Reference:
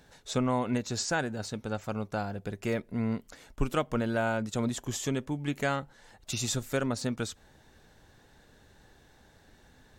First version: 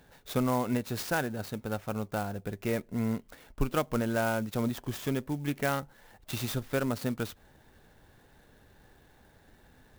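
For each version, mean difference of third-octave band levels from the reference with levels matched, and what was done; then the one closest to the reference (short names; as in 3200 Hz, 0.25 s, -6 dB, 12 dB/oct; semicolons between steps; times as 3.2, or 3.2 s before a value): 3.0 dB: median filter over 5 samples; clock jitter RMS 0.035 ms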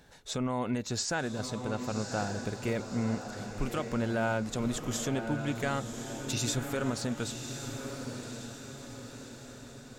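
8.5 dB: limiter -21 dBFS, peak gain reduction 7.5 dB; diffused feedback echo 1.112 s, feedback 52%, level -7 dB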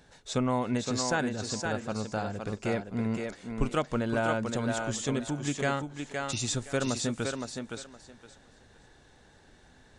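5.0 dB: on a send: thinning echo 0.516 s, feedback 21%, high-pass 210 Hz, level -4 dB; on the sum: downsampling 22050 Hz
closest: first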